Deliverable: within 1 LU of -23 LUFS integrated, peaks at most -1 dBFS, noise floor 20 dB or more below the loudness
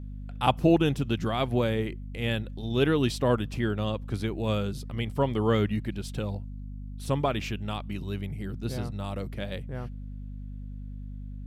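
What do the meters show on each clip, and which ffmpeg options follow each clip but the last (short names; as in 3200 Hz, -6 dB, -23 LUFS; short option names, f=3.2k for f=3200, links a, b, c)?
hum 50 Hz; harmonics up to 250 Hz; hum level -36 dBFS; loudness -29.0 LUFS; peak -8.0 dBFS; loudness target -23.0 LUFS
-> -af "bandreject=f=50:t=h:w=6,bandreject=f=100:t=h:w=6,bandreject=f=150:t=h:w=6,bandreject=f=200:t=h:w=6,bandreject=f=250:t=h:w=6"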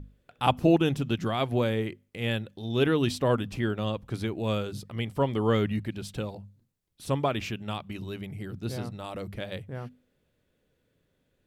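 hum none; loudness -29.5 LUFS; peak -8.0 dBFS; loudness target -23.0 LUFS
-> -af "volume=6.5dB"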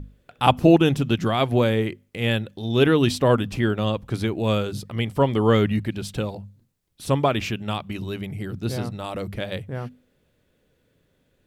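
loudness -23.0 LUFS; peak -1.5 dBFS; noise floor -67 dBFS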